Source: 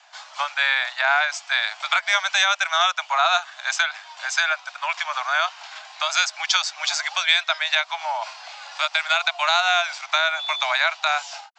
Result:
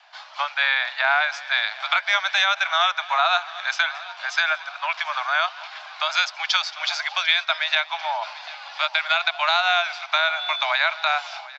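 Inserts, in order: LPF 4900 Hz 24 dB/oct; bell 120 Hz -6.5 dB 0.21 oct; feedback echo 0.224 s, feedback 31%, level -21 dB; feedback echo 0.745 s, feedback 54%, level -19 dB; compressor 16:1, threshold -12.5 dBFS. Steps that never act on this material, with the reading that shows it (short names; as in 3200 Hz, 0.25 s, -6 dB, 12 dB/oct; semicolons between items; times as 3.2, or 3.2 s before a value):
bell 120 Hz: input band starts at 510 Hz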